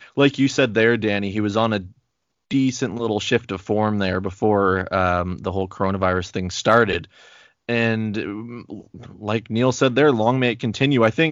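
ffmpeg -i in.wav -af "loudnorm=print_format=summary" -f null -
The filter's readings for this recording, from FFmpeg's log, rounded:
Input Integrated:    -20.1 LUFS
Input True Peak:      -1.7 dBTP
Input LRA:             2.8 LU
Input Threshold:     -30.8 LUFS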